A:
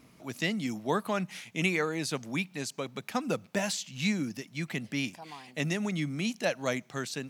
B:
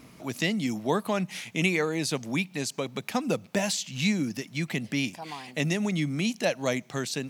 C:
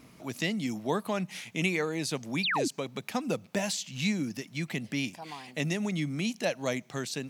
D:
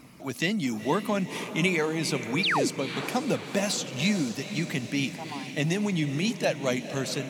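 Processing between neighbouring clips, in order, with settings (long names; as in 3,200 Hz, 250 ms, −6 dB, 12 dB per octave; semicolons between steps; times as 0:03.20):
dynamic equaliser 1,400 Hz, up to −5 dB, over −49 dBFS, Q 2; in parallel at −2 dB: downward compressor, threshold −38 dBFS, peak gain reduction 14 dB; on the sum: level +2 dB
sound drawn into the spectrogram fall, 0:02.43–0:02.68, 230–4,900 Hz −25 dBFS; level −3.5 dB
spectral magnitudes quantised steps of 15 dB; feedback delay with all-pass diffusion 487 ms, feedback 56%, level −10.5 dB; level +4 dB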